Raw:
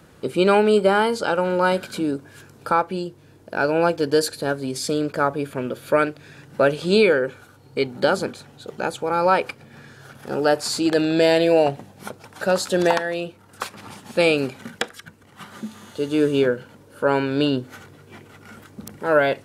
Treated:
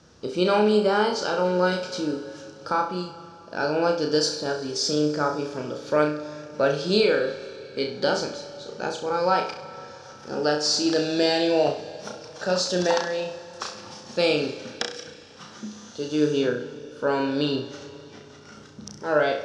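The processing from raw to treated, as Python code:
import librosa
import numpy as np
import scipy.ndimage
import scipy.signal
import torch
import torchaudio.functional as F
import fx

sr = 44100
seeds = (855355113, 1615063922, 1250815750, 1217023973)

p1 = fx.ladder_lowpass(x, sr, hz=6100.0, resonance_pct=70)
p2 = fx.peak_eq(p1, sr, hz=2200.0, db=-5.0, octaves=0.46)
p3 = p2 + fx.room_flutter(p2, sr, wall_m=5.7, rt60_s=0.4, dry=0)
p4 = fx.rev_schroeder(p3, sr, rt60_s=3.5, comb_ms=31, drr_db=13.0)
y = p4 * librosa.db_to_amplitude(6.0)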